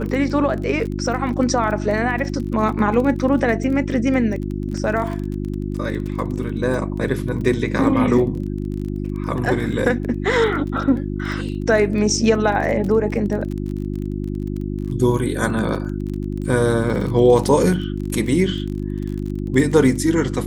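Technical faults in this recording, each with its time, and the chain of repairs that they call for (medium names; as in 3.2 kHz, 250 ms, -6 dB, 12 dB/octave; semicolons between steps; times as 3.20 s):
crackle 26 per s -27 dBFS
hum 50 Hz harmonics 7 -25 dBFS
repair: de-click; de-hum 50 Hz, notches 7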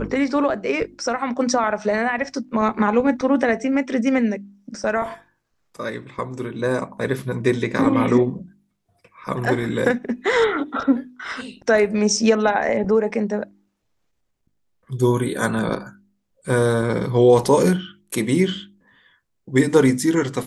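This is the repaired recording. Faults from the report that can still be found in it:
nothing left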